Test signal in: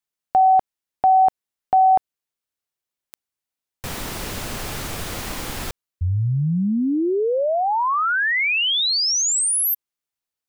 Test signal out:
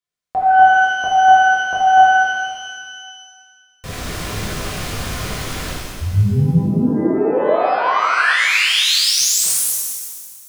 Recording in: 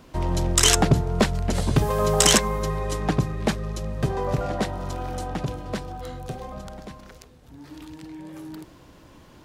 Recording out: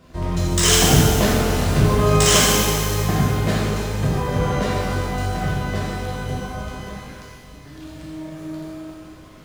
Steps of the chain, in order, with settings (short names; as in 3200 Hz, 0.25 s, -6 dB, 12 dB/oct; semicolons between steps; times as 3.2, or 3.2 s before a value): median filter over 3 samples; Butterworth band-stop 860 Hz, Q 7.6; shimmer reverb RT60 1.8 s, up +12 st, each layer -8 dB, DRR -7.5 dB; gain -4 dB